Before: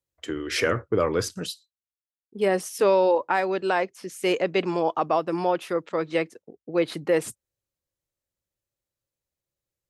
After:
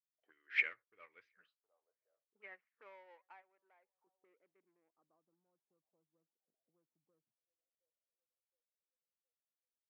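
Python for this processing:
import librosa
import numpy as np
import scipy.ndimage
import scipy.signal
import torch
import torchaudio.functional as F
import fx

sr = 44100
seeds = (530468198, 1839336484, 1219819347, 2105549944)

p1 = fx.high_shelf(x, sr, hz=2100.0, db=-5.0)
p2 = p1 + fx.echo_wet_bandpass(p1, sr, ms=715, feedback_pct=60, hz=1100.0, wet_db=-24.0, dry=0)
p3 = fx.filter_sweep_lowpass(p2, sr, from_hz=3100.0, to_hz=170.0, start_s=1.85, end_s=5.51, q=1.2)
p4 = fx.low_shelf(p3, sr, hz=420.0, db=-11.5, at=(3.42, 4.07))
p5 = 10.0 ** (-27.5 / 20.0) * np.tanh(p4 / 10.0 ** (-27.5 / 20.0))
p6 = p4 + (p5 * 10.0 ** (-4.0 / 20.0))
p7 = fx.auto_wah(p6, sr, base_hz=580.0, top_hz=2200.0, q=4.6, full_db=-23.0, direction='up')
y = fx.upward_expand(p7, sr, threshold_db=-45.0, expansion=2.5)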